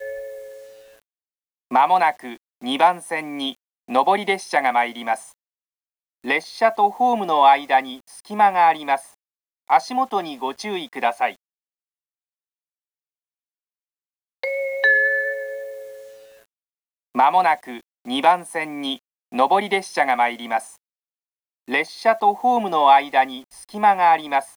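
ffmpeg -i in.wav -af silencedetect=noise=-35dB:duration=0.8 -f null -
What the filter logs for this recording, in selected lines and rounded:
silence_start: 0.58
silence_end: 1.71 | silence_duration: 1.14
silence_start: 5.29
silence_end: 6.24 | silence_duration: 0.96
silence_start: 11.32
silence_end: 14.43 | silence_duration: 3.11
silence_start: 16.01
silence_end: 17.15 | silence_duration: 1.14
silence_start: 20.70
silence_end: 21.68 | silence_duration: 0.98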